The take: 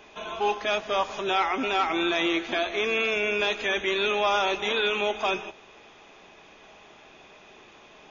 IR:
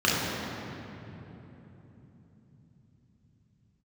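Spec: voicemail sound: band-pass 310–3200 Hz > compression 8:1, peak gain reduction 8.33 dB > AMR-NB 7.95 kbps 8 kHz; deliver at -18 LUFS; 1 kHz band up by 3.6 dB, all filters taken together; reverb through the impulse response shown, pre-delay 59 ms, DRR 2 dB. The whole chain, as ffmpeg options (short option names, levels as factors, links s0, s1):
-filter_complex "[0:a]equalizer=f=1000:t=o:g=5,asplit=2[s0][s1];[1:a]atrim=start_sample=2205,adelay=59[s2];[s1][s2]afir=irnorm=-1:irlink=0,volume=0.112[s3];[s0][s3]amix=inputs=2:normalize=0,highpass=310,lowpass=3200,acompressor=threshold=0.0708:ratio=8,volume=3.55" -ar 8000 -c:a libopencore_amrnb -b:a 7950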